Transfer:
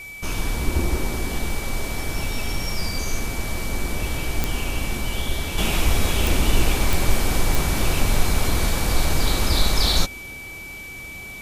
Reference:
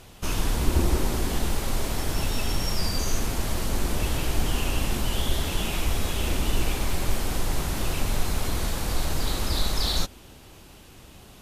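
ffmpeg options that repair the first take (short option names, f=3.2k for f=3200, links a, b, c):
-af "adeclick=t=4,bandreject=f=2.3k:w=30,agate=range=-21dB:threshold=-28dB,asetnsamples=n=441:p=0,asendcmd='5.58 volume volume -6dB',volume=0dB"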